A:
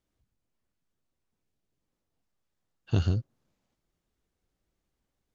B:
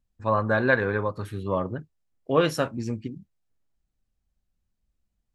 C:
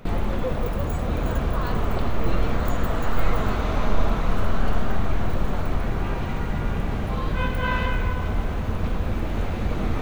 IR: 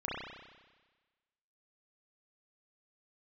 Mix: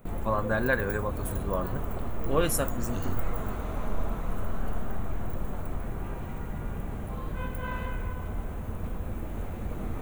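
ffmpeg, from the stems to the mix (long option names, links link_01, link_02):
-filter_complex "[0:a]volume=-9.5dB[link_01];[1:a]volume=-5dB[link_02];[2:a]highshelf=frequency=2700:gain=-11,volume=-9dB[link_03];[link_01][link_02][link_03]amix=inputs=3:normalize=0,aexciter=amount=11:drive=1.5:freq=7100"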